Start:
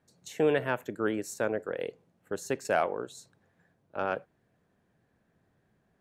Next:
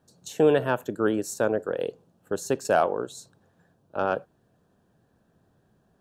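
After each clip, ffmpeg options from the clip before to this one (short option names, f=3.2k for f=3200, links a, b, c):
-af "equalizer=f=2.1k:t=o:w=0.41:g=-15,volume=6dB"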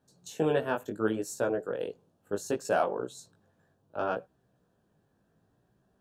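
-af "flanger=delay=15.5:depth=4.6:speed=0.68,volume=-2dB"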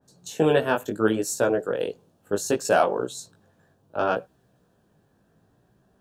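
-af "adynamicequalizer=threshold=0.00501:dfrequency=2100:dqfactor=0.7:tfrequency=2100:tqfactor=0.7:attack=5:release=100:ratio=0.375:range=2:mode=boostabove:tftype=highshelf,volume=7dB"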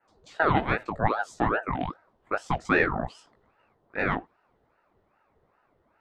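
-af "highpass=130,lowpass=2.8k,aeval=exprs='val(0)*sin(2*PI*670*n/s+670*0.7/2.5*sin(2*PI*2.5*n/s))':c=same"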